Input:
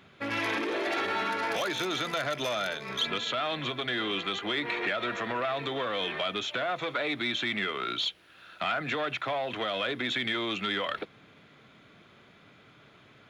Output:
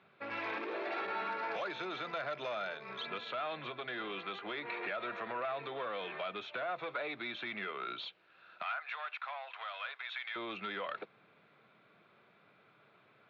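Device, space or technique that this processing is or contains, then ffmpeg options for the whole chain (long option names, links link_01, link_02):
kitchen radio: -filter_complex "[0:a]asettb=1/sr,asplit=3[link_01][link_02][link_03];[link_01]atrim=end=8.624[link_04];[link_02]atrim=start=8.62:end=10.36,asetpts=PTS-STARTPTS,afade=type=in:duration=0.004:curve=qsin,afade=type=out:start_time=1.736:duration=0.004:curve=qsin,highpass=frequency=850:width=0.5412,highpass=frequency=850:width=1.3066[link_05];[link_03]atrim=start=10.356[link_06];[link_04][link_05]acrossfade=duration=0.004:curve1=hsin:curve2=qsin[link_07];[link_07][link_06]acrossfade=duration=0.004:curve1=qsin:curve2=hsin,highpass=190,equalizer=frequency=270:width_type=q:width=4:gain=-7,equalizer=frequency=1900:width_type=q:width=4:gain=-5,equalizer=frequency=3200:width_type=q:width=4:gain=-9,lowpass=frequency=3700:width=0.5412,lowpass=frequency=3700:width=1.3066,equalizer=frequency=280:width_type=o:width=1.6:gain=-3,volume=-5.5dB"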